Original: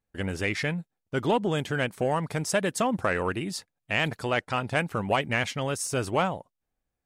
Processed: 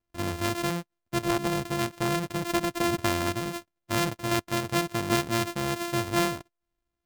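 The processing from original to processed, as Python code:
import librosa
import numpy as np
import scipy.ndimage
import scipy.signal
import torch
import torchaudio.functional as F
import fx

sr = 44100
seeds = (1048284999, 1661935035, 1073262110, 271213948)

y = np.r_[np.sort(x[:len(x) // 128 * 128].reshape(-1, 128), axis=1).ravel(), x[len(x) // 128 * 128:]]
y = fx.transformer_sat(y, sr, knee_hz=440.0, at=(1.25, 2.84))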